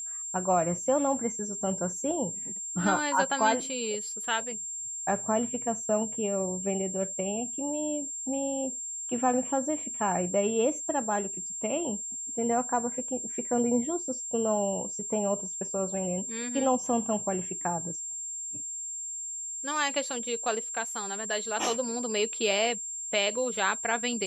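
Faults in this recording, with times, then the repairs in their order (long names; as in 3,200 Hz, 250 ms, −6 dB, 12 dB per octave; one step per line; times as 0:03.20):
whistle 7,400 Hz −34 dBFS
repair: notch filter 7,400 Hz, Q 30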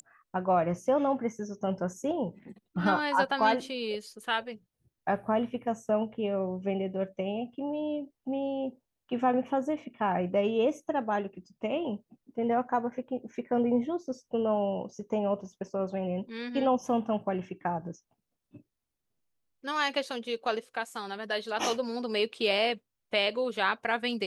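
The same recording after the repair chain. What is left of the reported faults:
none of them is left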